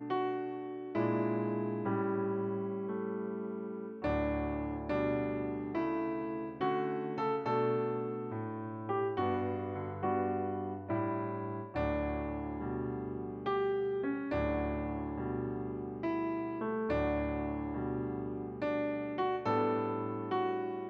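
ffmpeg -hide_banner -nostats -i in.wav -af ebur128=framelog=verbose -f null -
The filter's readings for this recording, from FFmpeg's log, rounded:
Integrated loudness:
  I:         -35.4 LUFS
  Threshold: -45.4 LUFS
Loudness range:
  LRA:         1.4 LU
  Threshold: -55.5 LUFS
  LRA low:   -36.1 LUFS
  LRA high:  -34.7 LUFS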